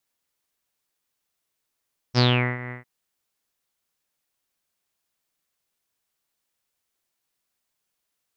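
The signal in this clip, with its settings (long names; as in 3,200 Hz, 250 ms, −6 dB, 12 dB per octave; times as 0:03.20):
subtractive voice saw B2 24 dB per octave, low-pass 2,000 Hz, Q 8.8, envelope 1.5 octaves, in 0.30 s, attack 45 ms, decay 0.39 s, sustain −18 dB, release 0.13 s, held 0.57 s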